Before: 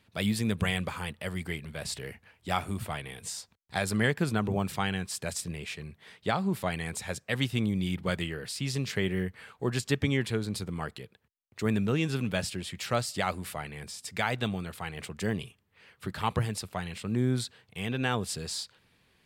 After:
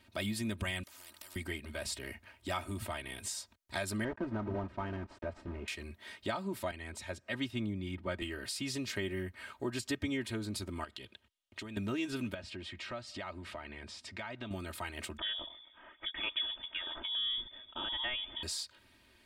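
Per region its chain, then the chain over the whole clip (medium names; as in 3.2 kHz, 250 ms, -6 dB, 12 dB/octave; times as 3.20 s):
0.83–1.36 s: compression, threshold -47 dBFS + spectrum-flattening compressor 10:1
4.04–5.68 s: block-companded coder 3-bit + low-pass 1.1 kHz
6.71–8.22 s: low-pass 2.8 kHz 6 dB/octave + upward compressor, threshold -39 dBFS + three bands expanded up and down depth 70%
10.84–11.77 s: low-pass 11 kHz + peaking EQ 3.2 kHz +10.5 dB 0.63 oct + compression 12:1, threshold -40 dBFS
12.34–14.51 s: low-pass 3.6 kHz + compression 2:1, threshold -46 dBFS
15.18–18.43 s: peaking EQ 560 Hz -4.5 dB 3 oct + frequency-shifting echo 129 ms, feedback 48%, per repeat -120 Hz, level -22 dB + frequency inversion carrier 3.5 kHz
whole clip: comb 3.2 ms, depth 92%; compression 2:1, threshold -40 dBFS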